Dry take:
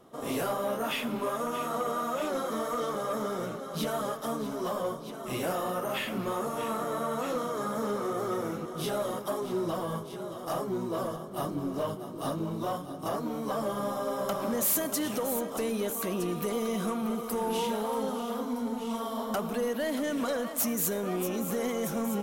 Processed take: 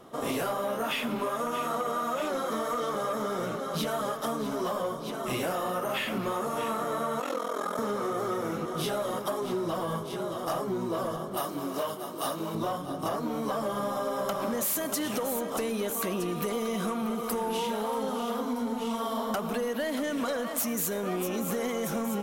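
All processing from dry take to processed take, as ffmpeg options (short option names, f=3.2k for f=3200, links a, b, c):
-filter_complex "[0:a]asettb=1/sr,asplit=3[a][b][c];[a]atrim=end=7.204[d];[b]atrim=start=7.2:end=7.79,asetpts=PTS-STARTPTS,afade=t=in:d=0.004:c=qsin,afade=t=out:st=0.586:d=0.004:c=qsin,highpass=f=250:w=0.5412,highpass=f=250:w=1.3066,aeval=exprs='val(0)*sin(2*PI*21*n/s)':c=same[e];[c]atrim=start=7.786[f];[d][e]acrossfade=d=0.004:c1=hsin:c2=qsin[g];[g][f]acrossfade=d=0.004:c1=qsin:c2=hsin,asettb=1/sr,asplit=3[h][i][j];[h]atrim=end=11.374[k];[i]atrim=start=11.37:end=12.55,asetpts=PTS-STARTPTS,afade=t=in:d=0.004:c=qsin,afade=t=out:st=1.176:d=0.004:c=qsin,lowpass=f=3k:p=1,aemphasis=mode=production:type=riaa[l];[j]atrim=start=12.546[m];[k][l]acrossfade=d=0.004:c1=hsin:c2=qsin[n];[n][m]acrossfade=d=0.004:c1=qsin:c2=hsin,equalizer=f=2k:w=0.37:g=3,acompressor=threshold=-32dB:ratio=6,volume=4.5dB"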